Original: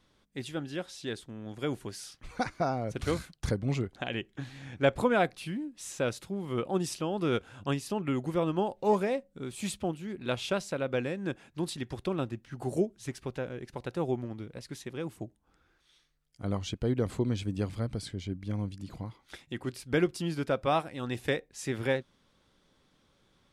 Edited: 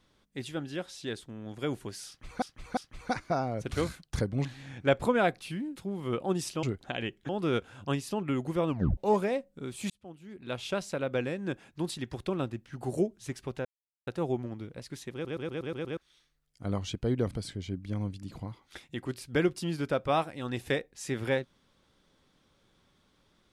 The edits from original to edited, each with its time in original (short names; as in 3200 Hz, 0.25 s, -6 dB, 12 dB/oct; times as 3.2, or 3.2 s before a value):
2.07–2.42 loop, 3 plays
3.75–4.41 move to 7.08
5.72–6.21 cut
8.48 tape stop 0.28 s
9.69–10.72 fade in
13.44–13.86 mute
14.92 stutter in place 0.12 s, 7 plays
17.1–17.89 cut